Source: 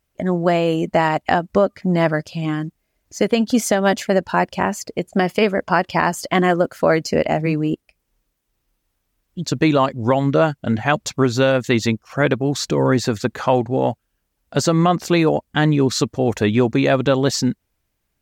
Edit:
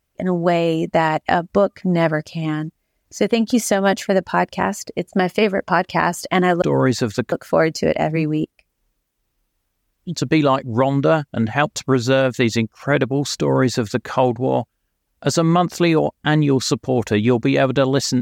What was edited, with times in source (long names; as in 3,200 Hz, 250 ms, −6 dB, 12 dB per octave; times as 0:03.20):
0:12.68–0:13.38: duplicate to 0:06.62